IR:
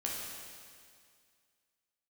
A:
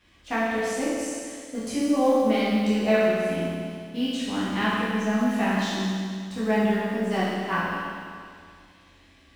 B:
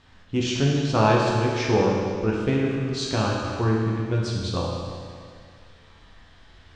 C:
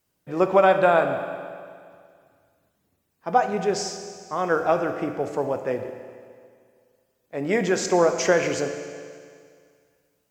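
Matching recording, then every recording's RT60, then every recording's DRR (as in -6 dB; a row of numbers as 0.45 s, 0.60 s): B; 2.1 s, 2.1 s, 2.1 s; -10.0 dB, -4.0 dB, 6.0 dB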